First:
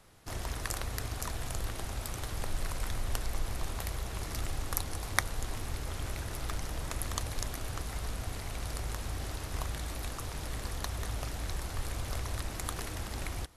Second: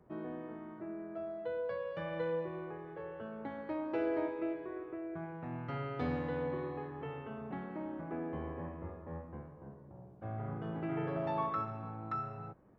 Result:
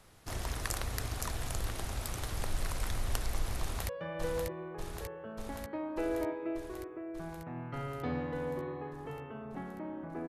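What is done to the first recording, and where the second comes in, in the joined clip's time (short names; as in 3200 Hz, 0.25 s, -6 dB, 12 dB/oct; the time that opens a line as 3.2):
first
3.6–3.89 echo throw 0.59 s, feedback 75%, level -4 dB
3.89 switch to second from 1.85 s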